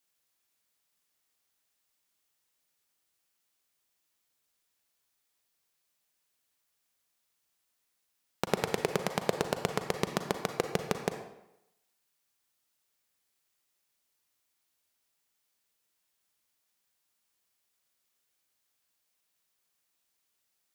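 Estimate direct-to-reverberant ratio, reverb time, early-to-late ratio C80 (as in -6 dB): 6.5 dB, 0.85 s, 9.5 dB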